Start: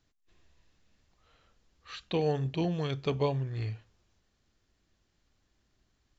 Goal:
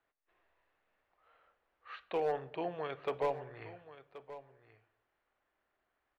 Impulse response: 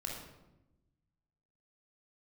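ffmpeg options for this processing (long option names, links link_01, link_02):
-filter_complex "[0:a]lowpass=4100,acrossover=split=440 2300:gain=0.0631 1 0.0794[link_01][link_02][link_03];[link_01][link_02][link_03]amix=inputs=3:normalize=0,volume=28dB,asoftclip=hard,volume=-28dB,aecho=1:1:1078:0.178,asplit=2[link_04][link_05];[1:a]atrim=start_sample=2205,afade=type=out:start_time=0.36:duration=0.01,atrim=end_sample=16317[link_06];[link_05][link_06]afir=irnorm=-1:irlink=0,volume=-16dB[link_07];[link_04][link_07]amix=inputs=2:normalize=0,volume=1dB"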